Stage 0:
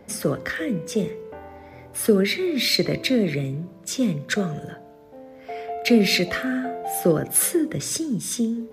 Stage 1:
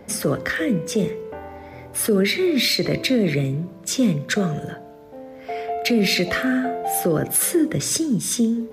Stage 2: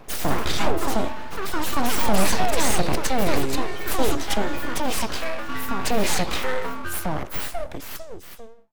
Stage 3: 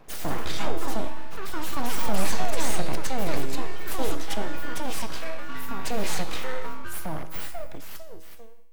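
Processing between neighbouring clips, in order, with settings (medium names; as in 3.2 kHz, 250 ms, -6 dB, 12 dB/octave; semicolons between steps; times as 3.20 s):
peak limiter -15 dBFS, peak gain reduction 9 dB; trim +4.5 dB
fade out at the end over 2.49 s; full-wave rectifier; ever faster or slower copies 111 ms, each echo +4 st, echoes 3
feedback comb 160 Hz, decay 1.1 s, mix 70%; trim +2.5 dB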